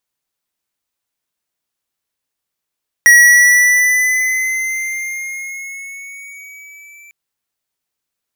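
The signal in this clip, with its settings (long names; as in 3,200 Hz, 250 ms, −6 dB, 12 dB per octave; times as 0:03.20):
pitch glide with a swell square, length 4.05 s, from 1,910 Hz, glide +3.5 semitones, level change −35.5 dB, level −5 dB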